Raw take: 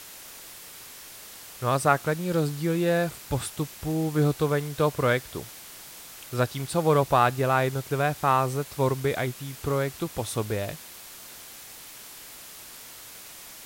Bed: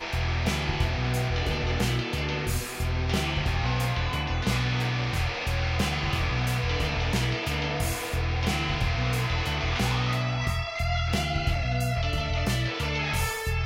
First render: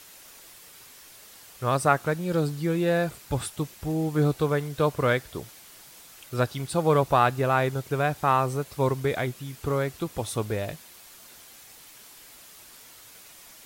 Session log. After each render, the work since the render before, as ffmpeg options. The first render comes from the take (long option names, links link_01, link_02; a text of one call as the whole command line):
ffmpeg -i in.wav -af "afftdn=noise_reduction=6:noise_floor=-45" out.wav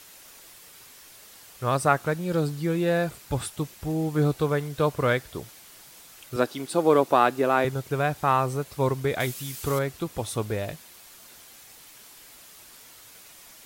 ffmpeg -i in.wav -filter_complex "[0:a]asettb=1/sr,asplit=3[link_01][link_02][link_03];[link_01]atrim=end=6.364[link_04];[link_02]atrim=start=6.36:end=7.65,asetpts=PTS-STARTPTS,afade=type=in:duration=0.004:curve=qsin,afade=type=out:start_time=1.286:duration=0.004:curve=qsin,highpass=frequency=280:width_type=q:width=1.8[link_05];[link_03]atrim=start=7.646[link_06];[link_04][link_05]acrossfade=duration=0.004:curve1=hsin:curve2=qsin[link_07];[link_07][link_06]acrossfade=duration=0.004:curve1=qsin:curve2=hsin,asettb=1/sr,asplit=3[link_08][link_09][link_10];[link_08]atrim=end=9.204[link_11];[link_09]atrim=start=9.2:end=9.79,asetpts=PTS-STARTPTS,afade=type=in:duration=0.004:curve=qsin,afade=type=out:start_time=0.586:duration=0.004:curve=qsin,highshelf=frequency=2800:gain=12[link_12];[link_10]atrim=start=9.786[link_13];[link_11][link_12]acrossfade=duration=0.004:curve1=hsin:curve2=qsin[link_14];[link_14][link_13]acrossfade=duration=0.004:curve1=qsin:curve2=hsin" out.wav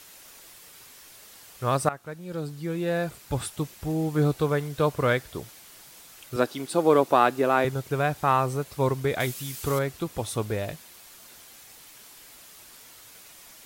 ffmpeg -i in.wav -filter_complex "[0:a]asplit=2[link_01][link_02];[link_01]atrim=end=1.89,asetpts=PTS-STARTPTS,afade=type=out:start_time=1.886:duration=0.004:curve=hsin:silence=0.149624[link_03];[link_02]atrim=start=1.89,asetpts=PTS-STARTPTS,afade=type=in:duration=1.59:silence=0.149624[link_04];[link_03][link_04]concat=n=2:v=0:a=1" out.wav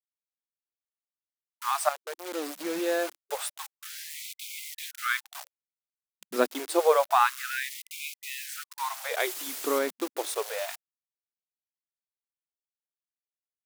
ffmpeg -i in.wav -af "acrusher=bits=5:mix=0:aa=0.000001,afftfilt=real='re*gte(b*sr/1024,210*pow(2100/210,0.5+0.5*sin(2*PI*0.28*pts/sr)))':imag='im*gte(b*sr/1024,210*pow(2100/210,0.5+0.5*sin(2*PI*0.28*pts/sr)))':win_size=1024:overlap=0.75" out.wav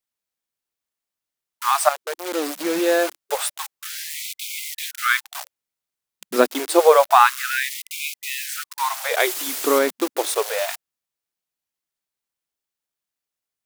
ffmpeg -i in.wav -af "volume=9dB,alimiter=limit=-1dB:level=0:latency=1" out.wav